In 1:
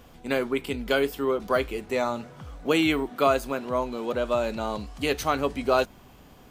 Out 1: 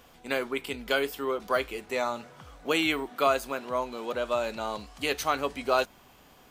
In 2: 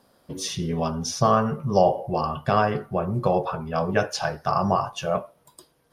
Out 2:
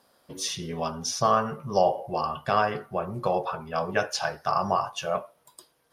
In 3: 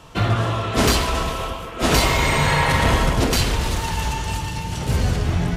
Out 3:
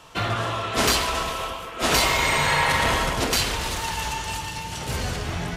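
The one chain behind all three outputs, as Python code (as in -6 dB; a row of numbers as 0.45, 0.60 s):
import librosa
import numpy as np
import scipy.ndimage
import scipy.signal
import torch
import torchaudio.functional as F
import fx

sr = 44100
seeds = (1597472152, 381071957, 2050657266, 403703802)

y = fx.low_shelf(x, sr, hz=400.0, db=-10.5)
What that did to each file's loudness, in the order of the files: -3.0, -3.0, -2.5 LU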